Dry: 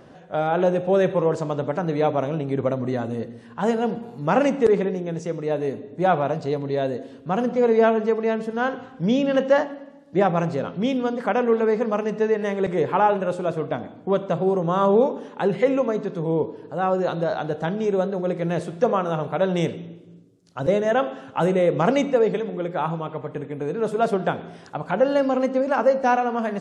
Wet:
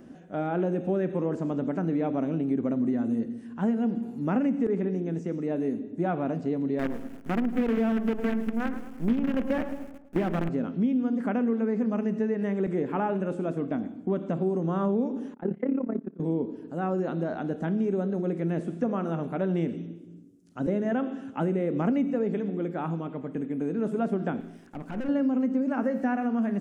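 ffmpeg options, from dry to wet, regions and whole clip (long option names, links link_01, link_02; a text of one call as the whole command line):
ffmpeg -i in.wav -filter_complex "[0:a]asettb=1/sr,asplit=3[link_01][link_02][link_03];[link_01]atrim=end=6.794[link_04];[link_02]atrim=start=6.79:end=10.49,asetpts=PTS-STARTPTS,afade=type=in:duration=0.004:curve=qsin,afade=type=out:start_time=3.696:duration=0.004:curve=qsin,acrusher=bits=4:dc=4:mix=0:aa=0.000001,asplit=2[link_05][link_06];[link_06]adelay=108,lowpass=frequency=1700:poles=1,volume=-12dB,asplit=2[link_07][link_08];[link_08]adelay=108,lowpass=frequency=1700:poles=1,volume=0.5,asplit=2[link_09][link_10];[link_10]adelay=108,lowpass=frequency=1700:poles=1,volume=0.5,asplit=2[link_11][link_12];[link_12]adelay=108,lowpass=frequency=1700:poles=1,volume=0.5,asplit=2[link_13][link_14];[link_14]adelay=108,lowpass=frequency=1700:poles=1,volume=0.5[link_15];[link_05][link_07][link_09][link_11][link_13][link_15]amix=inputs=6:normalize=0,atrim=end_sample=163170[link_16];[link_03]atrim=start=10.486[link_17];[link_04][link_16]acrossfade=duration=0.004:curve1=hsin:curve2=qsin[link_18];[link_18][link_17]acrossfade=duration=0.004:curve1=qsin:curve2=hsin,asettb=1/sr,asplit=3[link_19][link_20][link_21];[link_19]atrim=end=15.344[link_22];[link_20]atrim=start=15.34:end=16.2,asetpts=PTS-STARTPTS,afade=type=in:duration=0.004:curve=qsin,afade=type=out:start_time=0.856:duration=0.004:curve=qsin,lowpass=1700,agate=range=-13dB:threshold=-25dB:ratio=16:release=100:detection=peak,tremolo=f=34:d=0.857[link_23];[link_21]atrim=start=16.196[link_24];[link_22][link_23]acrossfade=duration=0.004:curve1=hsin:curve2=qsin[link_25];[link_25][link_24]acrossfade=duration=0.004:curve1=qsin:curve2=hsin,asettb=1/sr,asplit=3[link_26][link_27][link_28];[link_26]atrim=end=24.404[link_29];[link_27]atrim=start=24.4:end=25.09,asetpts=PTS-STARTPTS,afade=type=in:duration=0.004:curve=qsin,afade=type=out:start_time=0.686:duration=0.004:curve=qsin,aeval=exprs='(tanh(22.4*val(0)+0.5)-tanh(0.5))/22.4':channel_layout=same,aeval=exprs='sgn(val(0))*max(abs(val(0))-0.00126,0)':channel_layout=same[link_30];[link_28]atrim=start=25.086[link_31];[link_29][link_30]acrossfade=duration=0.004:curve1=hsin:curve2=qsin[link_32];[link_32][link_31]acrossfade=duration=0.004:curve1=qsin:curve2=hsin,asettb=1/sr,asplit=3[link_33][link_34][link_35];[link_33]atrim=end=25.814[link_36];[link_34]atrim=start=25.81:end=26.27,asetpts=PTS-STARTPTS,afade=type=in:duration=0.004:curve=qsin,afade=type=out:start_time=0.456:duration=0.004:curve=qsin,equalizer=frequency=1800:width_type=o:width=0.29:gain=8.5,aeval=exprs='sgn(val(0))*max(abs(val(0))-0.00282,0)':channel_layout=same[link_37];[link_35]atrim=start=26.266[link_38];[link_36][link_37]acrossfade=duration=0.004:curve1=hsin:curve2=qsin[link_39];[link_39][link_38]acrossfade=duration=0.004:curve1=qsin:curve2=hsin,acrossover=split=3000[link_40][link_41];[link_41]acompressor=threshold=-56dB:ratio=4:attack=1:release=60[link_42];[link_40][link_42]amix=inputs=2:normalize=0,equalizer=frequency=125:width_type=o:width=1:gain=-9,equalizer=frequency=250:width_type=o:width=1:gain=10,equalizer=frequency=500:width_type=o:width=1:gain=-8,equalizer=frequency=1000:width_type=o:width=1:gain=-9,equalizer=frequency=2000:width_type=o:width=1:gain=-3,equalizer=frequency=4000:width_type=o:width=1:gain=-10,acompressor=threshold=-23dB:ratio=4" out.wav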